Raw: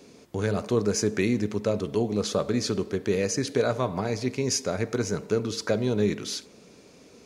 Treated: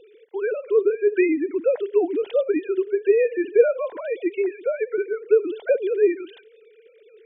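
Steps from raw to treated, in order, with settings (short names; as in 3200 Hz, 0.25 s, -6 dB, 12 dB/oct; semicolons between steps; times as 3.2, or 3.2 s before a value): sine-wave speech; bell 1200 Hz -14 dB 0.26 oct; gain +5 dB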